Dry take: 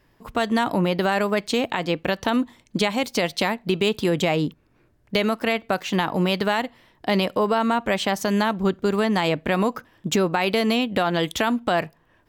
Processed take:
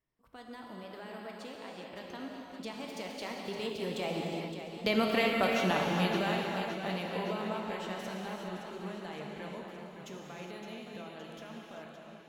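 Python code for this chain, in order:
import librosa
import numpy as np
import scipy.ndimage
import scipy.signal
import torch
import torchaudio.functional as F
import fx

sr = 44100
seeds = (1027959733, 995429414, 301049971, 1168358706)

y = fx.doppler_pass(x, sr, speed_mps=20, closest_m=10.0, pass_at_s=5.27)
y = fx.rev_gated(y, sr, seeds[0], gate_ms=440, shape='flat', drr_db=-0.5)
y = fx.echo_warbled(y, sr, ms=566, feedback_pct=59, rate_hz=2.8, cents=55, wet_db=-9.0)
y = y * 10.0 ** (-7.0 / 20.0)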